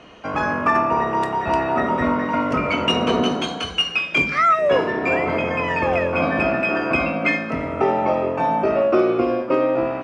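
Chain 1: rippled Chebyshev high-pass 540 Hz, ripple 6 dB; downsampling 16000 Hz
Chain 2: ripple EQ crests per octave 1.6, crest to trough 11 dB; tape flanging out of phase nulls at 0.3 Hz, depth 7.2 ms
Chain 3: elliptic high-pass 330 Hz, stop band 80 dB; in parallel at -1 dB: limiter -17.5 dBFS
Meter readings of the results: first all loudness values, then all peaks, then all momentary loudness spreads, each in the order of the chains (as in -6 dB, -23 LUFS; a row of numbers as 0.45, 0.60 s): -24.0, -21.5, -17.0 LUFS; -9.5, -6.0, -5.0 dBFS; 8, 5, 4 LU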